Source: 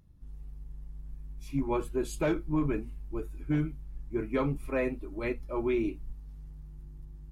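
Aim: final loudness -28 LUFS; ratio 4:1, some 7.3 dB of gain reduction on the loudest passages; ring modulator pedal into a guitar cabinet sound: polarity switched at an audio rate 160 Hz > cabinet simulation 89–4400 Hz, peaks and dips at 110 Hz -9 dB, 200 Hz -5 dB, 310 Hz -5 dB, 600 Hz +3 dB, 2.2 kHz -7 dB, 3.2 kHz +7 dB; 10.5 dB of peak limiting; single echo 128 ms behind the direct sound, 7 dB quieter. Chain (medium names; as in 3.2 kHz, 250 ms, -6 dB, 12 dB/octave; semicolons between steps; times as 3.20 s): compression 4:1, threshold -33 dBFS; peak limiter -34.5 dBFS; delay 128 ms -7 dB; polarity switched at an audio rate 160 Hz; cabinet simulation 89–4400 Hz, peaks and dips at 110 Hz -9 dB, 200 Hz -5 dB, 310 Hz -5 dB, 600 Hz +3 dB, 2.2 kHz -7 dB, 3.2 kHz +7 dB; trim +17 dB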